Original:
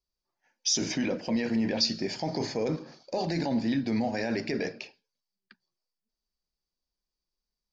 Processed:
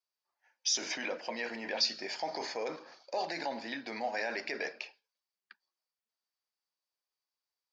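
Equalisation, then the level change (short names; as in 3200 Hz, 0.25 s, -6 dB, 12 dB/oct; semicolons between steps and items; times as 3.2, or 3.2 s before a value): HPF 800 Hz 12 dB/oct; high shelf 3800 Hz -10 dB; +3.0 dB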